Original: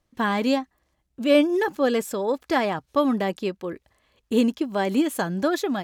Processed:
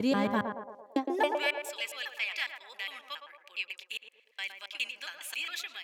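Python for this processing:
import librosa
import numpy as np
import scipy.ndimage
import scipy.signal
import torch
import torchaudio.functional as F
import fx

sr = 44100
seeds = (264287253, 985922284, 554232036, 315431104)

y = fx.block_reorder(x, sr, ms=137.0, group=4)
y = fx.filter_sweep_highpass(y, sr, from_hz=110.0, to_hz=2500.0, start_s=0.65, end_s=1.58, q=4.6)
y = fx.echo_banded(y, sr, ms=113, feedback_pct=64, hz=590.0, wet_db=-4)
y = y * librosa.db_to_amplitude(-7.0)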